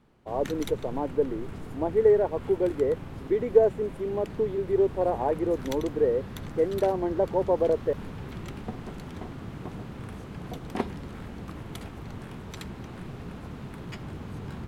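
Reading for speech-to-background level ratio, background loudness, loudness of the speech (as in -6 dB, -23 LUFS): 13.0 dB, -39.5 LUFS, -26.5 LUFS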